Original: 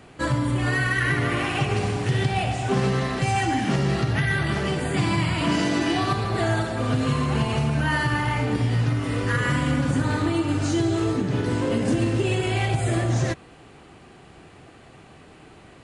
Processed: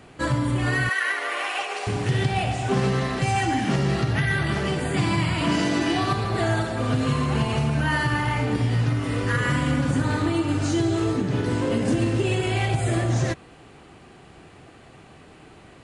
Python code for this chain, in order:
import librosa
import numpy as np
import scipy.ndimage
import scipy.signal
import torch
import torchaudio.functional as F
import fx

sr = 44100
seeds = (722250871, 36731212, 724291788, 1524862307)

y = fx.highpass(x, sr, hz=520.0, slope=24, at=(0.89, 1.87))